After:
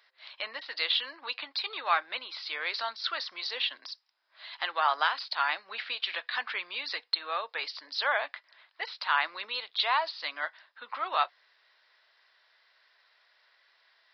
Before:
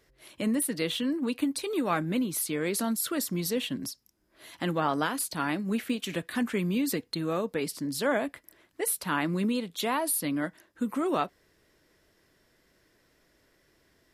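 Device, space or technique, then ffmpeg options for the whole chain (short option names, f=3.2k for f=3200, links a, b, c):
musical greeting card: -af "aresample=11025,aresample=44100,highpass=f=810:w=0.5412,highpass=f=810:w=1.3066,equalizer=f=3.9k:t=o:w=0.26:g=5,volume=4.5dB"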